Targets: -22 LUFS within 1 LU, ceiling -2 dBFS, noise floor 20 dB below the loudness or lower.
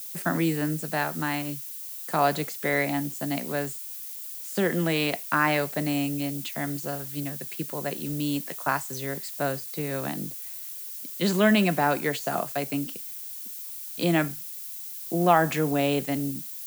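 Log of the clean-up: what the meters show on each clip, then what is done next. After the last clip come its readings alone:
noise floor -38 dBFS; noise floor target -48 dBFS; loudness -27.5 LUFS; peak level -5.5 dBFS; loudness target -22.0 LUFS
-> noise print and reduce 10 dB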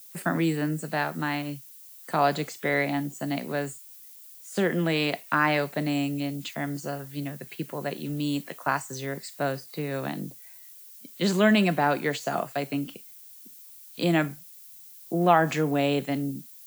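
noise floor -48 dBFS; loudness -27.5 LUFS; peak level -5.5 dBFS; loudness target -22.0 LUFS
-> trim +5.5 dB; peak limiter -2 dBFS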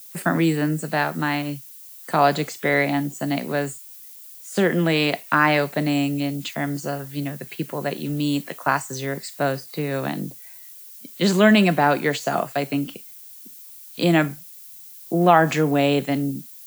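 loudness -22.0 LUFS; peak level -2.0 dBFS; noise floor -43 dBFS

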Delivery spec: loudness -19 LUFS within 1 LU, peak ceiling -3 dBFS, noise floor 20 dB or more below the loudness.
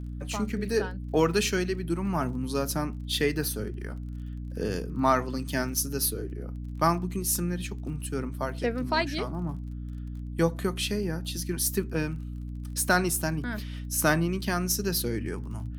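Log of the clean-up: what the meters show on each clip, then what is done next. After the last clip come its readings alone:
tick rate 29 per s; hum 60 Hz; highest harmonic 300 Hz; hum level -34 dBFS; loudness -29.0 LUFS; peak level -10.0 dBFS; loudness target -19.0 LUFS
-> de-click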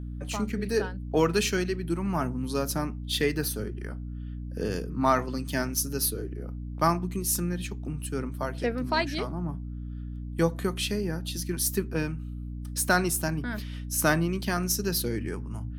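tick rate 0.13 per s; hum 60 Hz; highest harmonic 300 Hz; hum level -34 dBFS
-> de-hum 60 Hz, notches 5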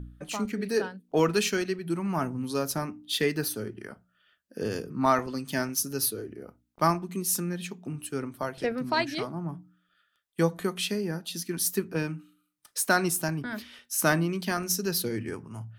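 hum not found; loudness -29.0 LUFS; peak level -10.5 dBFS; loudness target -19.0 LUFS
-> trim +10 dB; peak limiter -3 dBFS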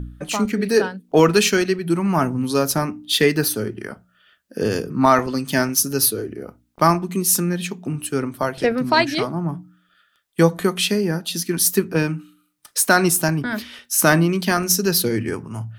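loudness -19.5 LUFS; peak level -3.0 dBFS; noise floor -64 dBFS

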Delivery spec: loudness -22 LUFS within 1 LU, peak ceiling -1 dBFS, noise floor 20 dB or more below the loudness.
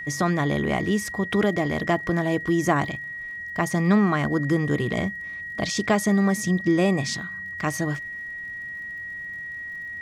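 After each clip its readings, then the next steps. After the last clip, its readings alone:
tick rate 50 per s; steady tone 1.9 kHz; tone level -32 dBFS; loudness -24.5 LUFS; peak level -8.0 dBFS; loudness target -22.0 LUFS
-> de-click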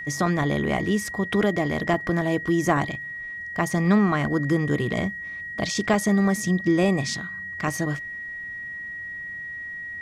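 tick rate 0.40 per s; steady tone 1.9 kHz; tone level -32 dBFS
-> band-stop 1.9 kHz, Q 30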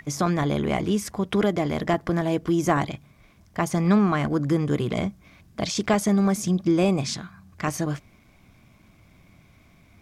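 steady tone not found; loudness -24.0 LUFS; peak level -8.0 dBFS; loudness target -22.0 LUFS
-> trim +2 dB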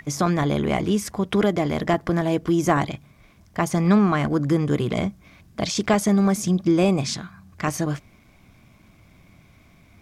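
loudness -22.0 LUFS; peak level -6.0 dBFS; noise floor -55 dBFS

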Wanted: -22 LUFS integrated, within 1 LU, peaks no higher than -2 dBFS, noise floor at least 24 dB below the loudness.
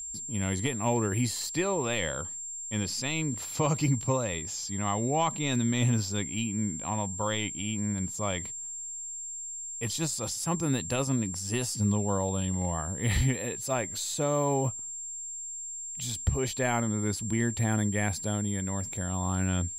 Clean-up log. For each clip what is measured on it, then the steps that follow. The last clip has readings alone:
steady tone 7.4 kHz; tone level -36 dBFS; loudness -30.0 LUFS; peak level -15.5 dBFS; loudness target -22.0 LUFS
-> band-stop 7.4 kHz, Q 30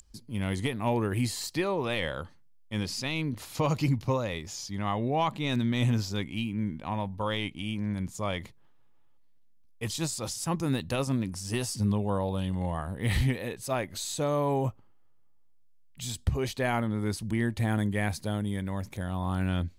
steady tone not found; loudness -30.5 LUFS; peak level -16.0 dBFS; loudness target -22.0 LUFS
-> trim +8.5 dB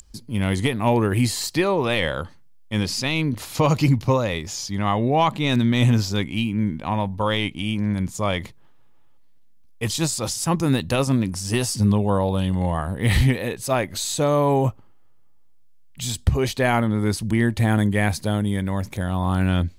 loudness -22.0 LUFS; peak level -7.5 dBFS; noise floor -47 dBFS

